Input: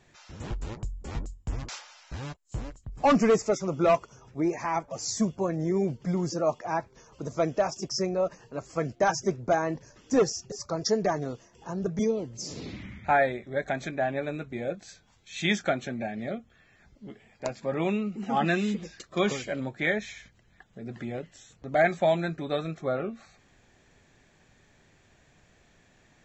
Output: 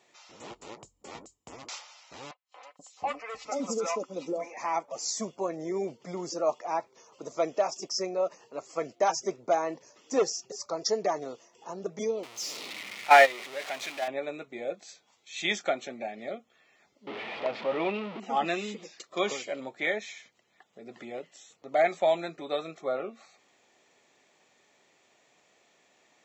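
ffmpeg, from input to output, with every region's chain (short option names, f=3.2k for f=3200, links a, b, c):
-filter_complex "[0:a]asettb=1/sr,asplit=3[a][b][c];[a]atrim=end=2.314[d];[b]atrim=start=2.31:end=4.57,asetpts=PTS-STARTPTS,afade=t=in:d=0.004:c=qsin,afade=t=out:st=2.256:d=0.004:c=qsin,aecho=1:1:3.9:0.56,atrim=end_sample=99666,acompressor=threshold=-21dB:ratio=6:attack=3.2:release=140:knee=1:detection=peak,acrossover=split=640|3500[e][f][g];[g]adelay=320[h];[e]adelay=480[i];[i][f][h]amix=inputs=3:normalize=0,atrim=end_sample=99666[j];[c]atrim=start=4.566[k];[d][j]acrossfade=d=0.004:c1=hsin:c2=qsin[l];[l][k]acrossfade=d=0.004:c1=qsin:c2=hsin,asettb=1/sr,asplit=3[m][n][o];[m]atrim=end=12.234[p];[n]atrim=start=12.23:end=14.08,asetpts=PTS-STARTPTS,afade=t=in:d=0.004:c=qsin,afade=t=out:st=1.846:d=0.004:c=qsin,aeval=exprs='val(0)+0.5*0.0376*sgn(val(0))':c=same,equalizer=f=2.7k:w=0.34:g=12.5,agate=range=-13dB:threshold=-16dB:ratio=16:release=100:detection=peak[q];[o]atrim=start=14.076[r];[p][q]acrossfade=d=0.004:c1=hsin:c2=qsin[s];[s][r]acrossfade=d=0.004:c1=qsin:c2=hsin,asettb=1/sr,asplit=3[t][u][v];[t]atrim=end=17.074[w];[u]atrim=start=17.07:end=18.2,asetpts=PTS-STARTPTS,afade=t=in:d=0.004:c=qsin,afade=t=out:st=1.126:d=0.004:c=qsin,aeval=exprs='val(0)+0.5*0.0355*sgn(val(0))':c=same,lowpass=f=3.4k:w=0.5412,lowpass=f=3.4k:w=1.3066[x];[v]atrim=start=18.196[y];[w][x]acrossfade=d=0.004:c1=hsin:c2=qsin[z];[z][y]acrossfade=d=0.004:c1=qsin:c2=hsin,highpass=410,equalizer=f=1.6k:w=6.5:g=-11.5"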